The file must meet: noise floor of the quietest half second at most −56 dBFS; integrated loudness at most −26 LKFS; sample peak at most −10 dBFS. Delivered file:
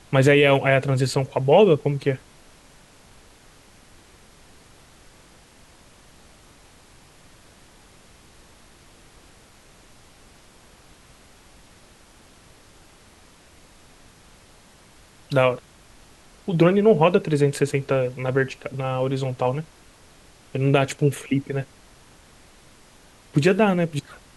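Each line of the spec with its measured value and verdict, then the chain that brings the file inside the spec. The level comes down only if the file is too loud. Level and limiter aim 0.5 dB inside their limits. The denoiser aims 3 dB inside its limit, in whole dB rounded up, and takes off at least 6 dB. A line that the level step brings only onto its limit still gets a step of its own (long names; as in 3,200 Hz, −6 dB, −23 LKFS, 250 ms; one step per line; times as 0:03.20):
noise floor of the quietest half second −51 dBFS: out of spec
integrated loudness −21.0 LKFS: out of spec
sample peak −4.5 dBFS: out of spec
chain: level −5.5 dB
brickwall limiter −10.5 dBFS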